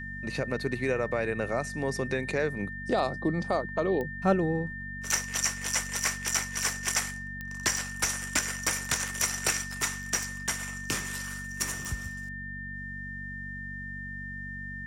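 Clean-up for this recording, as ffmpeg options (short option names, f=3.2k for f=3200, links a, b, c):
-af "adeclick=t=4,bandreject=f=47.9:t=h:w=4,bandreject=f=95.8:t=h:w=4,bandreject=f=143.7:t=h:w=4,bandreject=f=191.6:t=h:w=4,bandreject=f=239.5:t=h:w=4,bandreject=f=1.8k:w=30"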